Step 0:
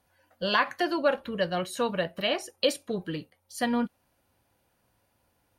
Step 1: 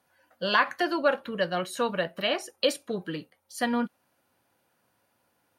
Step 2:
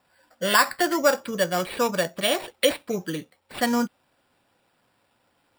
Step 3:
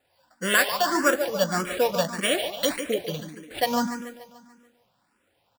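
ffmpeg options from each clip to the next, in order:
ffmpeg -i in.wav -af "highpass=150,equalizer=frequency=1400:width_type=o:width=0.74:gain=3.5" out.wav
ffmpeg -i in.wav -af "acrusher=samples=7:mix=1:aa=0.000001,volume=4dB" out.wav
ffmpeg -i in.wav -filter_complex "[0:a]aecho=1:1:145|290|435|580|725|870|1015:0.355|0.199|0.111|0.0623|0.0349|0.0195|0.0109,asplit=2[link_01][link_02];[link_02]aeval=exprs='sgn(val(0))*max(abs(val(0))-0.0133,0)':channel_layout=same,volume=-8.5dB[link_03];[link_01][link_03]amix=inputs=2:normalize=0,asplit=2[link_04][link_05];[link_05]afreqshift=1.7[link_06];[link_04][link_06]amix=inputs=2:normalize=1" out.wav

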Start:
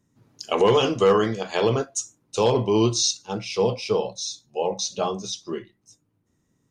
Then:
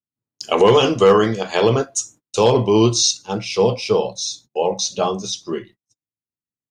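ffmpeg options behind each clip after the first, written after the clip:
ffmpeg -i in.wav -af "agate=range=-37dB:threshold=-47dB:ratio=16:detection=peak,volume=5.5dB" out.wav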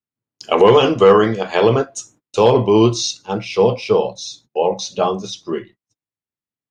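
ffmpeg -i in.wav -af "bass=frequency=250:gain=-2,treble=frequency=4000:gain=-11,volume=2.5dB" out.wav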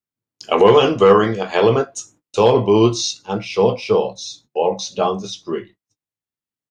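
ffmpeg -i in.wav -filter_complex "[0:a]asplit=2[link_01][link_02];[link_02]adelay=20,volume=-12dB[link_03];[link_01][link_03]amix=inputs=2:normalize=0,volume=-1dB" out.wav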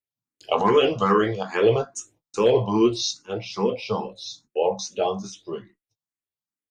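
ffmpeg -i in.wav -filter_complex "[0:a]asplit=2[link_01][link_02];[link_02]afreqshift=2.4[link_03];[link_01][link_03]amix=inputs=2:normalize=1,volume=-3dB" out.wav

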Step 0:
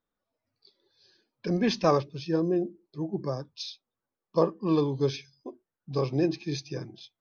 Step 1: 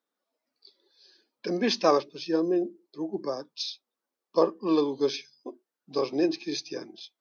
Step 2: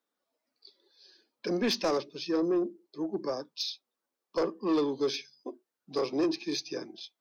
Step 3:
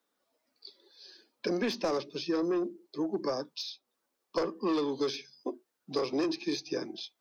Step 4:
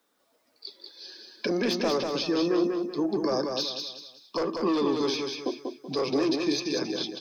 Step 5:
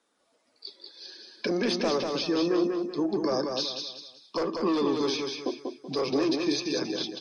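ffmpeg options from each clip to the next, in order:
ffmpeg -i in.wav -af "highpass=frequency=240:width=0.5412,highpass=frequency=240:width=1.3066,equalizer=frequency=4700:width=1.5:gain=3.5,volume=1.5dB" out.wav
ffmpeg -i in.wav -filter_complex "[0:a]acrossover=split=410|3000[link_01][link_02][link_03];[link_02]acompressor=threshold=-26dB:ratio=6[link_04];[link_01][link_04][link_03]amix=inputs=3:normalize=0,asoftclip=type=tanh:threshold=-21dB" out.wav
ffmpeg -i in.wav -filter_complex "[0:a]acrossover=split=190|1100[link_01][link_02][link_03];[link_01]acompressor=threshold=-53dB:ratio=4[link_04];[link_02]acompressor=threshold=-35dB:ratio=4[link_05];[link_03]acompressor=threshold=-44dB:ratio=4[link_06];[link_04][link_05][link_06]amix=inputs=3:normalize=0,volume=5.5dB" out.wav
ffmpeg -i in.wav -af "alimiter=level_in=3dB:limit=-24dB:level=0:latency=1:release=47,volume=-3dB,aecho=1:1:190|380|570|760:0.596|0.208|0.073|0.0255,volume=8dB" out.wav
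ffmpeg -i in.wav -ar 44100 -c:a libmp3lame -b:a 48k out.mp3

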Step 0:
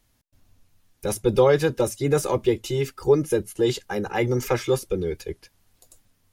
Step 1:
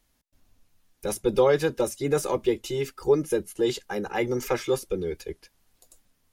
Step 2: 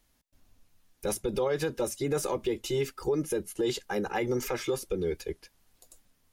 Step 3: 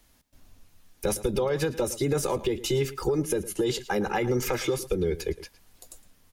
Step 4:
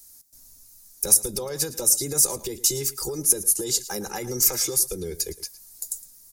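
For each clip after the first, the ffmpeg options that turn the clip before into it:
ffmpeg -i in.wav -af "equalizer=frequency=110:width=2.1:gain=-9.5,volume=-2.5dB" out.wav
ffmpeg -i in.wav -af "alimiter=limit=-20dB:level=0:latency=1:release=86" out.wav
ffmpeg -i in.wav -filter_complex "[0:a]acrossover=split=150[link_01][link_02];[link_02]acompressor=threshold=-34dB:ratio=2.5[link_03];[link_01][link_03]amix=inputs=2:normalize=0,asplit=2[link_04][link_05];[link_05]adelay=110.8,volume=-16dB,highshelf=frequency=4000:gain=-2.49[link_06];[link_04][link_06]amix=inputs=2:normalize=0,volume=8dB" out.wav
ffmpeg -i in.wav -af "aexciter=amount=8.2:drive=7.9:freq=4600,volume=-6dB" out.wav

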